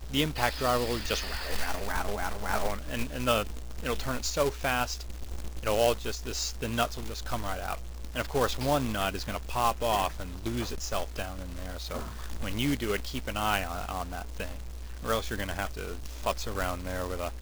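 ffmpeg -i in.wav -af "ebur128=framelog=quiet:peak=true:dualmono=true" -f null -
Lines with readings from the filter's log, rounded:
Integrated loudness:
  I:         -28.6 LUFS
  Threshold: -38.7 LUFS
Loudness range:
  LRA:         3.4 LU
  Threshold: -48.7 LUFS
  LRA low:   -30.7 LUFS
  LRA high:  -27.4 LUFS
True peak:
  Peak:       -8.1 dBFS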